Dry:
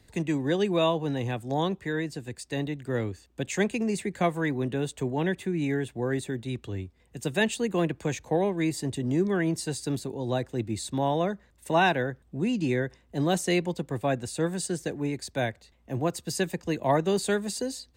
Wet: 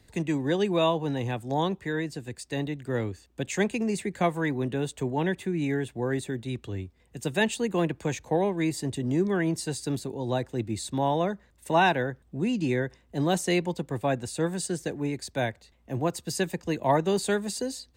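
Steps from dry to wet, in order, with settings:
dynamic equaliser 900 Hz, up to +4 dB, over −48 dBFS, Q 6

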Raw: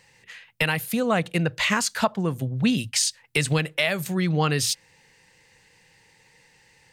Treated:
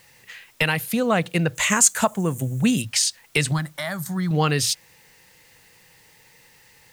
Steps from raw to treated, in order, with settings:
0:03.51–0:04.31: phaser with its sweep stopped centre 1,100 Hz, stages 4
background noise white −60 dBFS
0:01.55–0:02.82: high shelf with overshoot 5,800 Hz +7 dB, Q 3
level +2 dB

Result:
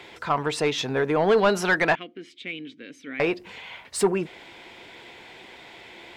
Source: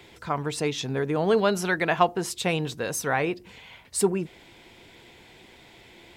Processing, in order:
0:01.95–0:03.20: formant filter i
mid-hump overdrive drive 15 dB, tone 2,400 Hz, clips at −9.5 dBFS

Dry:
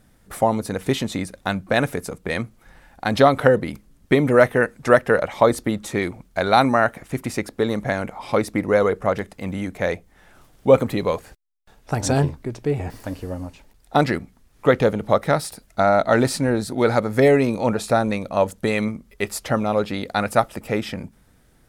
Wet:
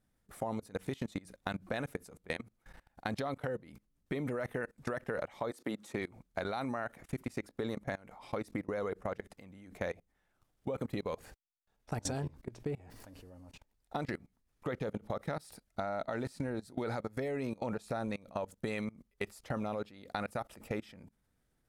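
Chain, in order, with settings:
output level in coarse steps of 24 dB
0:05.50–0:06.00: high-pass filter 390 Hz → 100 Hz 12 dB per octave
downward compressor, threshold −28 dBFS, peak gain reduction 8.5 dB
level −5 dB

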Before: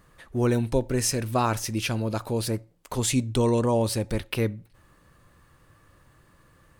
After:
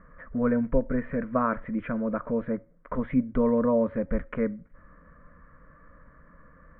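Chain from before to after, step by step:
Butterworth low-pass 2,700 Hz 72 dB per octave
low-shelf EQ 120 Hz +4.5 dB
in parallel at 0 dB: downward compressor, threshold −34 dBFS, peak gain reduction 16.5 dB
on the sum: phaser with its sweep stopped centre 540 Hz, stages 8

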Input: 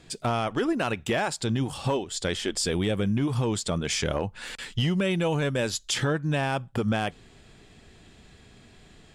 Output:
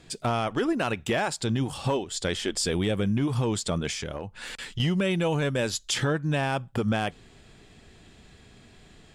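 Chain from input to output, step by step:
0:03.89–0:04.80: downward compressor 5 to 1, threshold −31 dBFS, peak gain reduction 8 dB

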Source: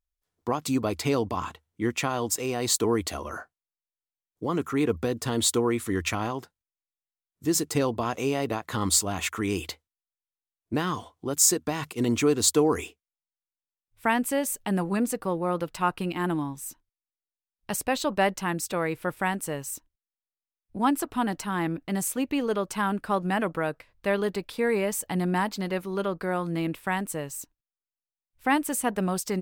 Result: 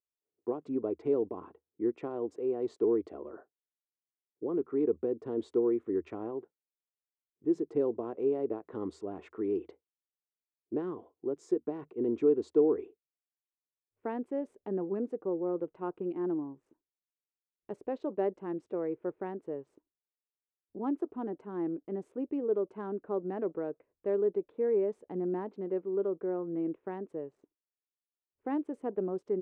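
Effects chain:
adaptive Wiener filter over 9 samples
resonant band-pass 390 Hz, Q 3.5
high-frequency loss of the air 59 metres
level +1.5 dB

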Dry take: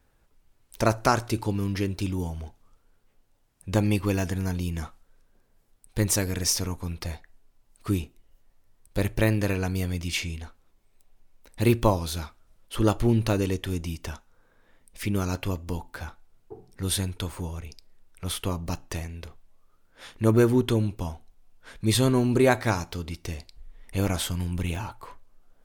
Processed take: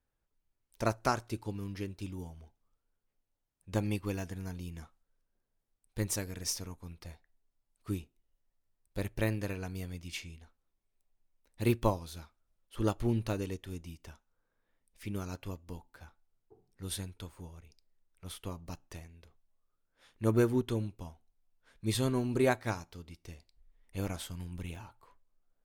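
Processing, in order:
expander for the loud parts 1.5 to 1, over −39 dBFS
level −6.5 dB

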